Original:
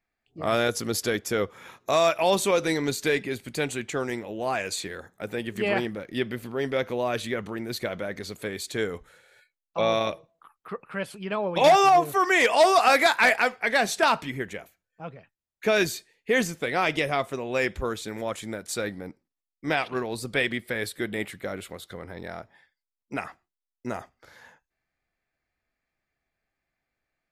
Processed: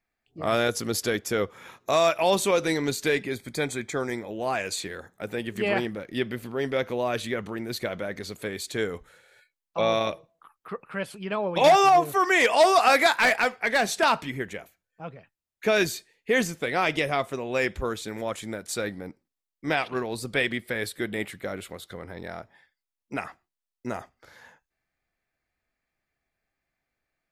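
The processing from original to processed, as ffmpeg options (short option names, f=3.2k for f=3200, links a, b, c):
-filter_complex "[0:a]asettb=1/sr,asplit=3[a][b][c];[a]atrim=end=3.314[d];[b]atrim=start=3.31:end=4.31,asetpts=PTS-STARTPTS,afade=t=in:d=0.004:c=qsin,afade=t=out:st=0.996:d=0.004:c=qsin,asuperstop=centerf=2800:order=8:qfactor=4.9[e];[c]atrim=start=4.306[f];[d][e]acrossfade=d=0.004:c1=hsin:c2=qsin[g];[g][f]acrossfade=d=0.004:c1=qsin:c2=hsin,asplit=3[h][i][j];[h]afade=t=out:st=13.17:d=0.02[k];[i]asoftclip=type=hard:threshold=-15dB,afade=t=in:st=13.17:d=0.02,afade=t=out:st=14.03:d=0.02[l];[j]afade=t=in:st=14.03:d=0.02[m];[k][l][m]amix=inputs=3:normalize=0"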